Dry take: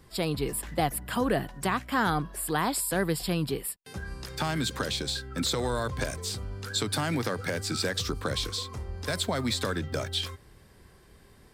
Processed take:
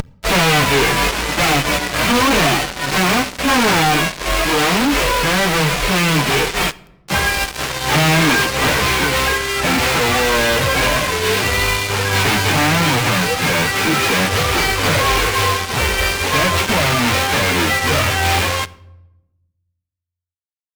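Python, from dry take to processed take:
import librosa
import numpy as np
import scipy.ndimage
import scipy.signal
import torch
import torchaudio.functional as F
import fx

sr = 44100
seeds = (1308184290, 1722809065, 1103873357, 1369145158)

p1 = fx.envelope_flatten(x, sr, power=0.1)
p2 = fx.dynamic_eq(p1, sr, hz=2400.0, q=2.5, threshold_db=-48.0, ratio=4.0, max_db=5)
p3 = fx.stretch_vocoder_free(p2, sr, factor=1.8)
p4 = p3 + fx.echo_wet_highpass(p3, sr, ms=744, feedback_pct=78, hz=4600.0, wet_db=-15.5, dry=0)
p5 = fx.vibrato(p4, sr, rate_hz=0.87, depth_cents=26.0)
p6 = fx.spacing_loss(p5, sr, db_at_10k=32)
p7 = fx.fuzz(p6, sr, gain_db=54.0, gate_db=-51.0)
p8 = fx.rider(p7, sr, range_db=10, speed_s=2.0)
p9 = fx.quant_float(p8, sr, bits=2)
y = fx.room_shoebox(p9, sr, seeds[0], volume_m3=3700.0, walls='furnished', distance_m=0.44)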